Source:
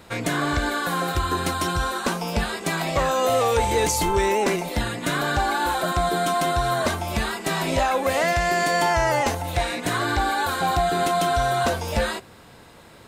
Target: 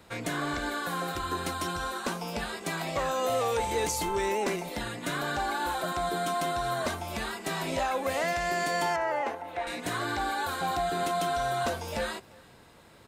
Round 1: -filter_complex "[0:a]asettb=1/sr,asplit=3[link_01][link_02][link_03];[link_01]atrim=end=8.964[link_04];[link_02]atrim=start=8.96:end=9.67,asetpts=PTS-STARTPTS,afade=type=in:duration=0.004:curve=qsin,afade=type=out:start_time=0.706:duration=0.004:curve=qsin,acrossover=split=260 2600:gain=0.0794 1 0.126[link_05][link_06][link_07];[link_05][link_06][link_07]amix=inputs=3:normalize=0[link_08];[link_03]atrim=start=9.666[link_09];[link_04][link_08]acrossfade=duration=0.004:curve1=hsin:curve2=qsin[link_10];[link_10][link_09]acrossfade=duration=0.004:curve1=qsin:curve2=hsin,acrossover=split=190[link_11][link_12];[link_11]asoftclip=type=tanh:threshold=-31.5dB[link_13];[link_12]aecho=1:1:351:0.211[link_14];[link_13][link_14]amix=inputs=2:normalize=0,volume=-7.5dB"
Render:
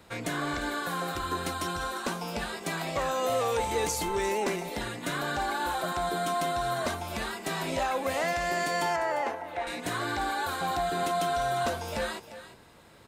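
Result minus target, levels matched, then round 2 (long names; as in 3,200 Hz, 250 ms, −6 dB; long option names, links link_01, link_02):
echo-to-direct +6.5 dB
-filter_complex "[0:a]asettb=1/sr,asplit=3[link_01][link_02][link_03];[link_01]atrim=end=8.964[link_04];[link_02]atrim=start=8.96:end=9.67,asetpts=PTS-STARTPTS,afade=type=in:duration=0.004:curve=qsin,afade=type=out:start_time=0.706:duration=0.004:curve=qsin,acrossover=split=260 2600:gain=0.0794 1 0.126[link_05][link_06][link_07];[link_05][link_06][link_07]amix=inputs=3:normalize=0[link_08];[link_03]atrim=start=9.666[link_09];[link_04][link_08]acrossfade=duration=0.004:curve1=hsin:curve2=qsin[link_10];[link_10][link_09]acrossfade=duration=0.004:curve1=qsin:curve2=hsin,acrossover=split=190[link_11][link_12];[link_11]asoftclip=type=tanh:threshold=-31.5dB[link_13];[link_12]aecho=1:1:351:0.0531[link_14];[link_13][link_14]amix=inputs=2:normalize=0,volume=-7.5dB"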